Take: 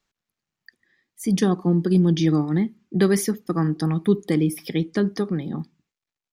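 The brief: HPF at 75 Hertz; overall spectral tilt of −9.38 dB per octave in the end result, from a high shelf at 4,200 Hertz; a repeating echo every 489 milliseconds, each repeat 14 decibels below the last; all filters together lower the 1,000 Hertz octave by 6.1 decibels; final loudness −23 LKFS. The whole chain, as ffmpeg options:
ffmpeg -i in.wav -af "highpass=75,equalizer=frequency=1000:width_type=o:gain=-8,highshelf=frequency=4200:gain=-7.5,aecho=1:1:489|978:0.2|0.0399" out.wav

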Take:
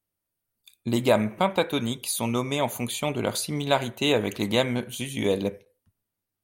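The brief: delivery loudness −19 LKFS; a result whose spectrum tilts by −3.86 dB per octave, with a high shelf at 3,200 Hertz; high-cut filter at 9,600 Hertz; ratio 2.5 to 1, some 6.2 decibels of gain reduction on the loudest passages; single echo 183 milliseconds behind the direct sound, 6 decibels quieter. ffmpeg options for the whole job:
ffmpeg -i in.wav -af "lowpass=9600,highshelf=frequency=3200:gain=5,acompressor=threshold=-25dB:ratio=2.5,aecho=1:1:183:0.501,volume=9dB" out.wav

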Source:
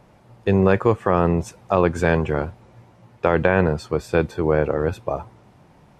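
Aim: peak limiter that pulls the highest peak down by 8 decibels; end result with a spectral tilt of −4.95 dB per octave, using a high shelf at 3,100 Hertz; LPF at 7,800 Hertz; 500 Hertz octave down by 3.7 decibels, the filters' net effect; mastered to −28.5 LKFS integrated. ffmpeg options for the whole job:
ffmpeg -i in.wav -af "lowpass=7800,equalizer=frequency=500:width_type=o:gain=-4.5,highshelf=frequency=3100:gain=4,volume=-3dB,alimiter=limit=-13.5dB:level=0:latency=1" out.wav

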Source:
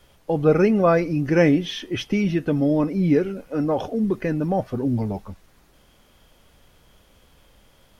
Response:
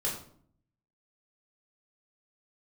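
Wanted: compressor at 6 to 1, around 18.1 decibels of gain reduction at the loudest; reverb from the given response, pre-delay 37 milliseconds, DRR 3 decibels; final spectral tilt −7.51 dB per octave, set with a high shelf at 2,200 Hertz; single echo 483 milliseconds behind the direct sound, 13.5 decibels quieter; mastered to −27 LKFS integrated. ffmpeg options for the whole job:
-filter_complex "[0:a]highshelf=frequency=2200:gain=-8,acompressor=threshold=-33dB:ratio=6,aecho=1:1:483:0.211,asplit=2[link_01][link_02];[1:a]atrim=start_sample=2205,adelay=37[link_03];[link_02][link_03]afir=irnorm=-1:irlink=0,volume=-8dB[link_04];[link_01][link_04]amix=inputs=2:normalize=0,volume=6dB"

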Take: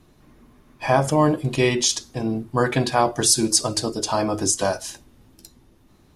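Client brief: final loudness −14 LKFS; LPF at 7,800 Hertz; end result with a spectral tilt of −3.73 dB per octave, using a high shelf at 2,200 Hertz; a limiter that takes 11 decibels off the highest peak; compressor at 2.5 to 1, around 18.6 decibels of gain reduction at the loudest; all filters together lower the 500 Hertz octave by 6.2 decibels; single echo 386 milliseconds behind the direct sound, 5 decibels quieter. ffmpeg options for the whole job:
ffmpeg -i in.wav -af "lowpass=7800,equalizer=frequency=500:width_type=o:gain=-9,highshelf=frequency=2200:gain=3.5,acompressor=threshold=-42dB:ratio=2.5,alimiter=level_in=8dB:limit=-24dB:level=0:latency=1,volume=-8dB,aecho=1:1:386:0.562,volume=27dB" out.wav

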